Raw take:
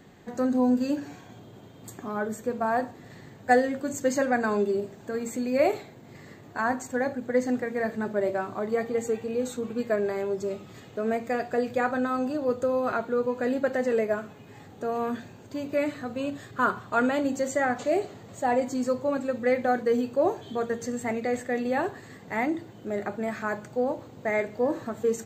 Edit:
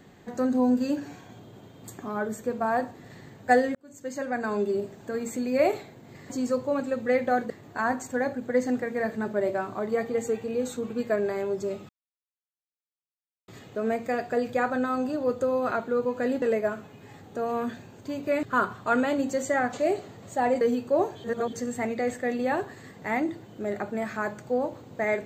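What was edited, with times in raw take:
3.75–4.8 fade in
10.69 insert silence 1.59 s
13.63–13.88 cut
15.89–16.49 cut
18.67–19.87 move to 6.3
20.5–20.79 reverse

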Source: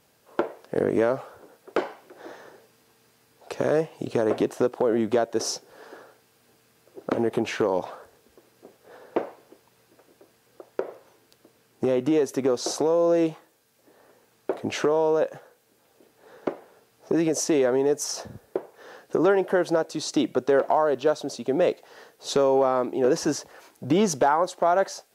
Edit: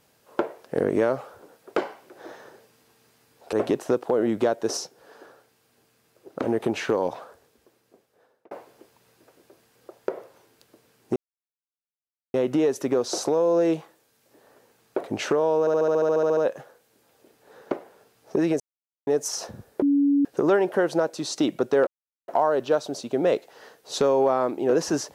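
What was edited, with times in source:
3.53–4.24 cut
5.48–7.14 gain -3.5 dB
7.66–9.22 fade out
11.87 insert silence 1.18 s
15.13 stutter 0.07 s, 12 plays
17.36–17.83 mute
18.58–19.01 bleep 283 Hz -16.5 dBFS
20.63 insert silence 0.41 s

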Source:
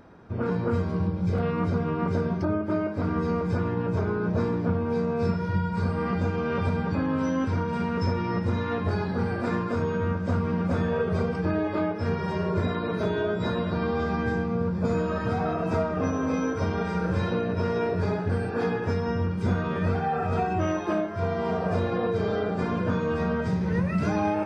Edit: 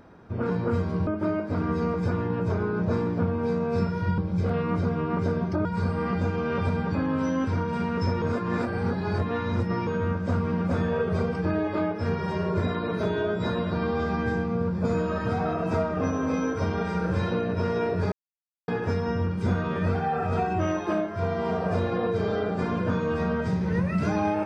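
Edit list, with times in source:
1.07–2.54 move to 5.65
8.22–9.87 reverse
18.12–18.68 mute

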